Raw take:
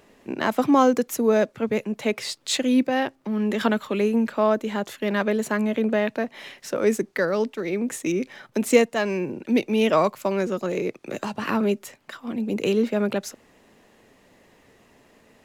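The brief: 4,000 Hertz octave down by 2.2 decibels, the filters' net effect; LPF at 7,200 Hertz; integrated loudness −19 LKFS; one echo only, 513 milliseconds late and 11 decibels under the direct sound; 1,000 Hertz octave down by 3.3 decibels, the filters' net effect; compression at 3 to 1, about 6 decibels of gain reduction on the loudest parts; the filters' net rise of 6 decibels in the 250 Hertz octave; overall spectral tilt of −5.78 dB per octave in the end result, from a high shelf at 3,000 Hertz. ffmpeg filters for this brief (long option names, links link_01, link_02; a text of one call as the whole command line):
ffmpeg -i in.wav -af "lowpass=7200,equalizer=frequency=250:width_type=o:gain=7,equalizer=frequency=1000:width_type=o:gain=-5,highshelf=frequency=3000:gain=5.5,equalizer=frequency=4000:width_type=o:gain=-6.5,acompressor=threshold=-17dB:ratio=3,aecho=1:1:513:0.282,volume=4dB" out.wav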